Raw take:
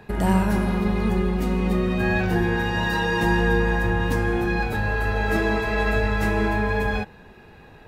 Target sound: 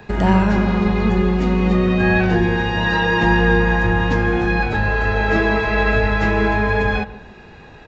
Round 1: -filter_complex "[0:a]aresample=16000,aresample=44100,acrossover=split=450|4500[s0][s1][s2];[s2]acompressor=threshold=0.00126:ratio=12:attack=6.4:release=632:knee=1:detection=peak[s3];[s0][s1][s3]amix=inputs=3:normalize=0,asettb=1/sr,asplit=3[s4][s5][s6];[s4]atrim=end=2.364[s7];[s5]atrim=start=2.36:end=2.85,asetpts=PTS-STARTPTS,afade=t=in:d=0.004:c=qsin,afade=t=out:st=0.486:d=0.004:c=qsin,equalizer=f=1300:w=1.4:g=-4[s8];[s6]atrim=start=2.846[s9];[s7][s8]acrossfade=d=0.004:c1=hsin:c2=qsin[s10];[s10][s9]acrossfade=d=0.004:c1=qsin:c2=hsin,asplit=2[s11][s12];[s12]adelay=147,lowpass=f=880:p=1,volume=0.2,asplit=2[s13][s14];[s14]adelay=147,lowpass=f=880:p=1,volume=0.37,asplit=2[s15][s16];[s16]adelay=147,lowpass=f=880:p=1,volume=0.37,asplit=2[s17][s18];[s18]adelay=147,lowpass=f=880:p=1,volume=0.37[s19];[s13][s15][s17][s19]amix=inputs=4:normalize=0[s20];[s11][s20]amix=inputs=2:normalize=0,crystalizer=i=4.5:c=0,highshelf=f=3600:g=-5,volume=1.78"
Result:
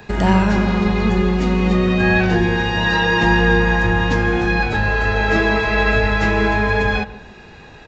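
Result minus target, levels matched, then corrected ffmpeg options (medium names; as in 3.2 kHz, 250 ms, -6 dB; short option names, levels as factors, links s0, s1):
8 kHz band +5.5 dB
-filter_complex "[0:a]aresample=16000,aresample=44100,acrossover=split=450|4500[s0][s1][s2];[s2]acompressor=threshold=0.00126:ratio=12:attack=6.4:release=632:knee=1:detection=peak[s3];[s0][s1][s3]amix=inputs=3:normalize=0,asettb=1/sr,asplit=3[s4][s5][s6];[s4]atrim=end=2.364[s7];[s5]atrim=start=2.36:end=2.85,asetpts=PTS-STARTPTS,afade=t=in:d=0.004:c=qsin,afade=t=out:st=0.486:d=0.004:c=qsin,equalizer=f=1300:w=1.4:g=-4[s8];[s6]atrim=start=2.846[s9];[s7][s8]acrossfade=d=0.004:c1=hsin:c2=qsin[s10];[s10][s9]acrossfade=d=0.004:c1=qsin:c2=hsin,asplit=2[s11][s12];[s12]adelay=147,lowpass=f=880:p=1,volume=0.2,asplit=2[s13][s14];[s14]adelay=147,lowpass=f=880:p=1,volume=0.37,asplit=2[s15][s16];[s16]adelay=147,lowpass=f=880:p=1,volume=0.37,asplit=2[s17][s18];[s18]adelay=147,lowpass=f=880:p=1,volume=0.37[s19];[s13][s15][s17][s19]amix=inputs=4:normalize=0[s20];[s11][s20]amix=inputs=2:normalize=0,crystalizer=i=4.5:c=0,highshelf=f=3600:g=-13,volume=1.78"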